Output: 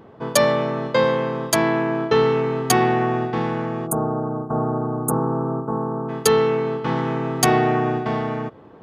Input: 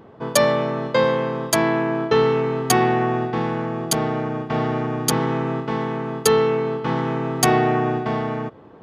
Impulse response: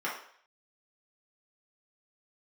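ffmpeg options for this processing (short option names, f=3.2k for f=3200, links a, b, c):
-filter_complex "[0:a]asplit=3[a][b][c];[a]afade=t=out:st=3.86:d=0.02[d];[b]asuperstop=centerf=3400:order=12:qfactor=0.51,afade=t=in:st=3.86:d=0.02,afade=t=out:st=6.08:d=0.02[e];[c]afade=t=in:st=6.08:d=0.02[f];[d][e][f]amix=inputs=3:normalize=0"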